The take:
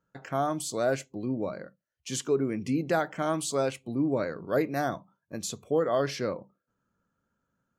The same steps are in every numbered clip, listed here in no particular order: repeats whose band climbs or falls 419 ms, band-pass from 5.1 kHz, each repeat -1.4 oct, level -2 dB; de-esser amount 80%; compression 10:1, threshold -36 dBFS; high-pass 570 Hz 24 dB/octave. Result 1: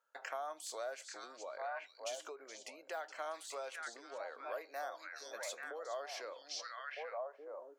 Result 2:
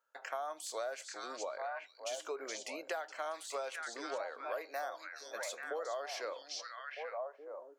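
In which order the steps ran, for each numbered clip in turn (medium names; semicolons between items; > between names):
de-esser > repeats whose band climbs or falls > compression > high-pass; high-pass > de-esser > repeats whose band climbs or falls > compression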